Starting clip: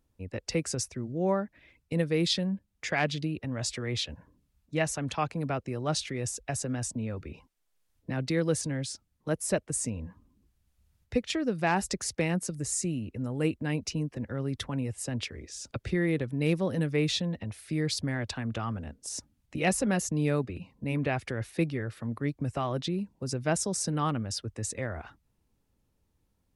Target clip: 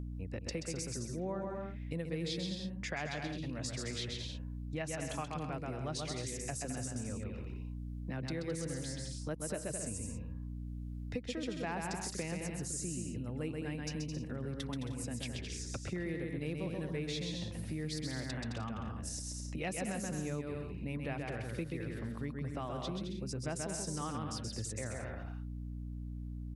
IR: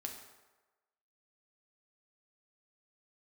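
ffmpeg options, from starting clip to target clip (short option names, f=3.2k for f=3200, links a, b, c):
-filter_complex "[0:a]asplit=2[a][b];[b]aecho=0:1:130|214.5|269.4|305.1|328.3:0.631|0.398|0.251|0.158|0.1[c];[a][c]amix=inputs=2:normalize=0,aeval=exprs='val(0)+0.0126*(sin(2*PI*60*n/s)+sin(2*PI*2*60*n/s)/2+sin(2*PI*3*60*n/s)/3+sin(2*PI*4*60*n/s)/4+sin(2*PI*5*60*n/s)/5)':c=same,acompressor=threshold=-41dB:ratio=3,volume=1dB"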